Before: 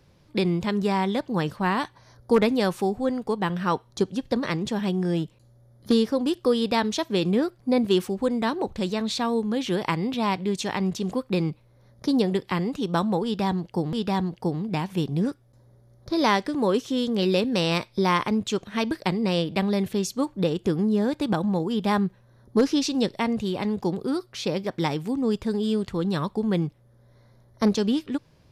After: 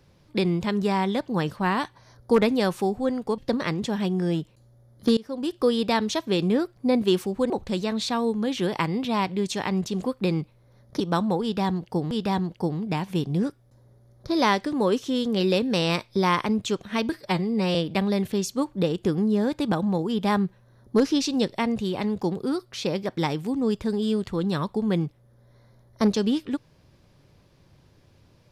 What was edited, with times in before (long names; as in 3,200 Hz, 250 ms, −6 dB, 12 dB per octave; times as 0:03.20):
0:03.38–0:04.21: remove
0:06.00–0:06.45: fade in, from −23 dB
0:08.33–0:08.59: remove
0:12.09–0:12.82: remove
0:18.94–0:19.36: time-stretch 1.5×